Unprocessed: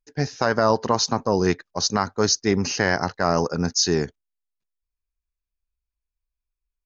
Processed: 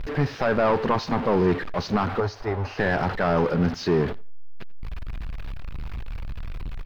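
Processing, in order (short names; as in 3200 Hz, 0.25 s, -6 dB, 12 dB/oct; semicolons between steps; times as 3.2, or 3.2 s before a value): zero-crossing step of -22.5 dBFS; 2.2–2.79 EQ curve 110 Hz 0 dB, 160 Hz -22 dB, 750 Hz +3 dB, 2500 Hz -7 dB; hard clip -14 dBFS, distortion -12 dB; air absorption 380 m; on a send: feedback echo 88 ms, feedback 17%, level -23.5 dB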